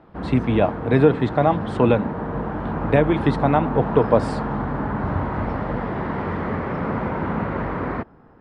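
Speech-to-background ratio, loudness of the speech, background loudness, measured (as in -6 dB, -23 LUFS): 6.5 dB, -20.0 LUFS, -26.5 LUFS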